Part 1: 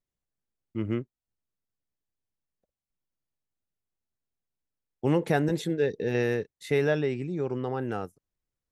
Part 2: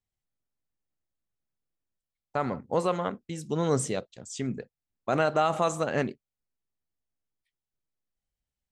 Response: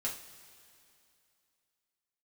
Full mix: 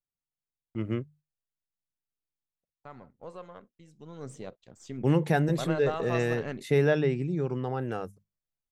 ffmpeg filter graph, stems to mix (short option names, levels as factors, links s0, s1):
-filter_complex "[0:a]bandreject=f=50:t=h:w=6,bandreject=f=100:t=h:w=6,bandreject=f=150:t=h:w=6,bandreject=f=200:t=h:w=6,agate=range=0.251:threshold=0.002:ratio=16:detection=peak,equalizer=f=150:t=o:w=0.35:g=6.5,volume=0.891[s0];[1:a]aeval=exprs='if(lt(val(0),0),0.708*val(0),val(0))':c=same,highshelf=f=7500:g=-11,adelay=500,volume=0.398,afade=t=in:st=4.17:d=0.52:silence=0.354813[s1];[s0][s1]amix=inputs=2:normalize=0,aphaser=in_gain=1:out_gain=1:delay=1.9:decay=0.22:speed=0.43:type=sinusoidal"